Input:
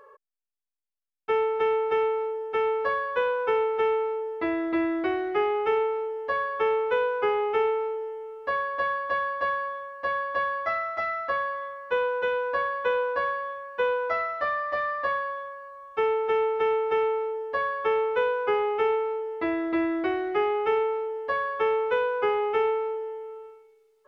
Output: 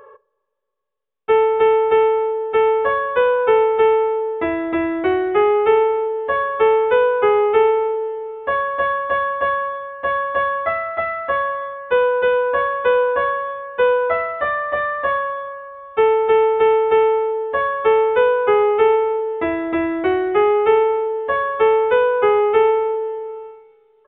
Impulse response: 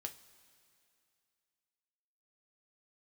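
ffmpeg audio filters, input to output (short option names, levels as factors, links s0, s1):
-filter_complex "[0:a]asplit=2[s0][s1];[s1]equalizer=f=710:t=o:w=0.77:g=5.5[s2];[1:a]atrim=start_sample=2205,lowshelf=f=480:g=10[s3];[s2][s3]afir=irnorm=-1:irlink=0,volume=0.562[s4];[s0][s4]amix=inputs=2:normalize=0,aresample=8000,aresample=44100,volume=1.58"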